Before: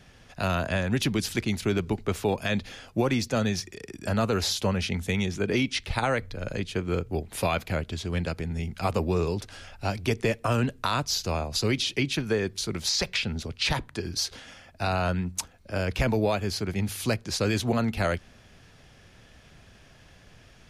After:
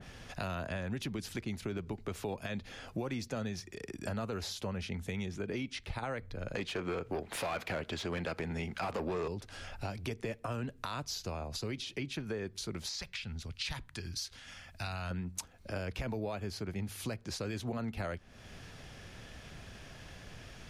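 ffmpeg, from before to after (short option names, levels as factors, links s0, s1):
-filter_complex "[0:a]asettb=1/sr,asplit=3[s0][s1][s2];[s0]atrim=end=6.554[s3];[s1]atrim=start=6.55:end=9.28,asetpts=PTS-STARTPTS,afade=t=in:d=0.004:c=qsin,afade=t=out:st=2.726:d=0.004:c=qsin,asplit=2[s4][s5];[s5]highpass=f=720:p=1,volume=12.6,asoftclip=type=tanh:threshold=0.237[s6];[s4][s6]amix=inputs=2:normalize=0,lowpass=f=3700:p=1,volume=0.501[s7];[s2]atrim=start=9.276[s8];[s3][s7]acrossfade=d=0.004:c1=hsin:c2=qsin[s9];[s9][s8]acrossfade=d=0.004:c1=qsin:c2=hsin,asettb=1/sr,asplit=3[s10][s11][s12];[s10]atrim=end=13.004[s13];[s11]atrim=start=13:end=15.11,asetpts=PTS-STARTPTS,afade=t=in:d=0.004:c=qsin,afade=t=out:st=2.106:d=0.004:c=qsin,equalizer=f=430:w=0.48:g=-12.5[s14];[s12]atrim=start=15.106[s15];[s13][s14]acrossfade=d=0.004:c1=hsin:c2=qsin[s16];[s16][s15]acrossfade=d=0.004:c1=qsin:c2=hsin,alimiter=limit=0.141:level=0:latency=1:release=101,acompressor=threshold=0.00562:ratio=2.5,adynamicequalizer=threshold=0.00158:dfrequency=2300:dqfactor=0.7:tfrequency=2300:tqfactor=0.7:attack=5:release=100:ratio=0.375:range=2.5:mode=cutabove:tftype=highshelf,volume=1.5"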